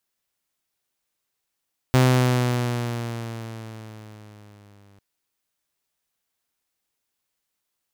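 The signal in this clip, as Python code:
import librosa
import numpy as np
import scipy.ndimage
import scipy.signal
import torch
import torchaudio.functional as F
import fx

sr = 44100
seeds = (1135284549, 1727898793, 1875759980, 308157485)

y = fx.riser_tone(sr, length_s=3.05, level_db=-10.5, wave='saw', hz=129.0, rise_st=-4.5, swell_db=-39)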